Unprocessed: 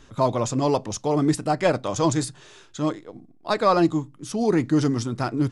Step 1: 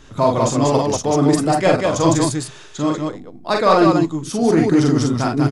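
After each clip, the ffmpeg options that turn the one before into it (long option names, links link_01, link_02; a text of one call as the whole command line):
ffmpeg -i in.wav -filter_complex "[0:a]asplit=2[link_01][link_02];[link_02]asoftclip=type=tanh:threshold=-23dB,volume=-11dB[link_03];[link_01][link_03]amix=inputs=2:normalize=0,aecho=1:1:43|55|191:0.668|0.299|0.668,volume=2.5dB" out.wav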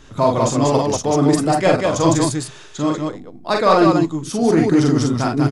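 ffmpeg -i in.wav -af anull out.wav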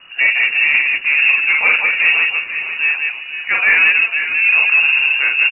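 ffmpeg -i in.wav -filter_complex "[0:a]asplit=5[link_01][link_02][link_03][link_04][link_05];[link_02]adelay=496,afreqshift=45,volume=-11dB[link_06];[link_03]adelay=992,afreqshift=90,volume=-20.4dB[link_07];[link_04]adelay=1488,afreqshift=135,volume=-29.7dB[link_08];[link_05]adelay=1984,afreqshift=180,volume=-39.1dB[link_09];[link_01][link_06][link_07][link_08][link_09]amix=inputs=5:normalize=0,acontrast=69,lowpass=frequency=2500:width_type=q:width=0.5098,lowpass=frequency=2500:width_type=q:width=0.6013,lowpass=frequency=2500:width_type=q:width=0.9,lowpass=frequency=2500:width_type=q:width=2.563,afreqshift=-2900,volume=-3.5dB" out.wav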